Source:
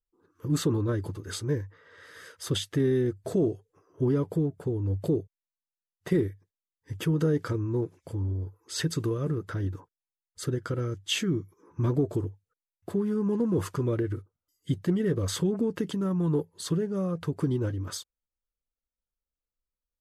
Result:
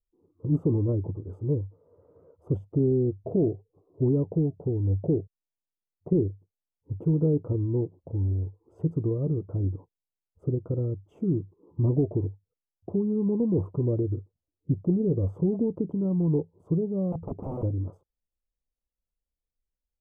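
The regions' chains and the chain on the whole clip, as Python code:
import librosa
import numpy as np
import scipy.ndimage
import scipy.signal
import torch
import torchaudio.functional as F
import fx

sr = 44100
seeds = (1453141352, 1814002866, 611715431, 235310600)

y = fx.chain(x, sr, fx.overflow_wrap(gain_db=28.0),
    fx.peak_eq(hz=180.0, db=4.0, octaves=2.2), at=(17.12, 17.63))
y = fx.wiener(y, sr, points=9)
y = scipy.signal.sosfilt(scipy.signal.cheby2(4, 40, 1600.0, 'lowpass', fs=sr, output='sos'), y)
y = fx.low_shelf(y, sr, hz=160.0, db=5.0)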